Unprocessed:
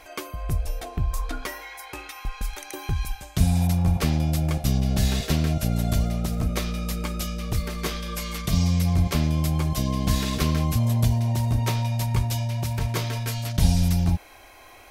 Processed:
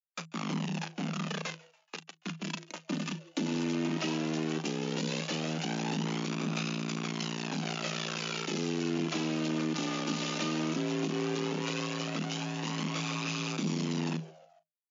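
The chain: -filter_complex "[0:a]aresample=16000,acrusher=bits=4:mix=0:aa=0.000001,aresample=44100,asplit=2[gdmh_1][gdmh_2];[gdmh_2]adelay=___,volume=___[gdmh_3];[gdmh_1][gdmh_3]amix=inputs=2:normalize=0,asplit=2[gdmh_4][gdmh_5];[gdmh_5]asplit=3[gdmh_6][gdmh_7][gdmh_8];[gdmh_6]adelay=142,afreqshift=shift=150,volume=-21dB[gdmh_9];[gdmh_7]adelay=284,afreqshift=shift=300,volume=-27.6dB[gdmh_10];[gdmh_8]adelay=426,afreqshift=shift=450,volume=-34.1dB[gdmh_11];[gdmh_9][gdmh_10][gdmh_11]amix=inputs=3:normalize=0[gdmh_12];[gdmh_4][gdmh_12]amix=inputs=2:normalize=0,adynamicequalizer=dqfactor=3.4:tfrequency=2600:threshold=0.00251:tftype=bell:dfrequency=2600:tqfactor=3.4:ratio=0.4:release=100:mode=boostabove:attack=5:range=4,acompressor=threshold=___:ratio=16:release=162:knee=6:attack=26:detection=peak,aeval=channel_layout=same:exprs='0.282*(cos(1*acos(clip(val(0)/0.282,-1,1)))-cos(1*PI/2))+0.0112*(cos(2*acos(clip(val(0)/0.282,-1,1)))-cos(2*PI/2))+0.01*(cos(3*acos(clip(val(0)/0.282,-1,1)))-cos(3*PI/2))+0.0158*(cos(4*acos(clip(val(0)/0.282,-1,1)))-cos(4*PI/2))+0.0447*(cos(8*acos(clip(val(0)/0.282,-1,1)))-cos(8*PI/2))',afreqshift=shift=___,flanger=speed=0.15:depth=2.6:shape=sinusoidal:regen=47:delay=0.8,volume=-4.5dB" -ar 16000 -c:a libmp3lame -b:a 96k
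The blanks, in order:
38, -13dB, -22dB, 160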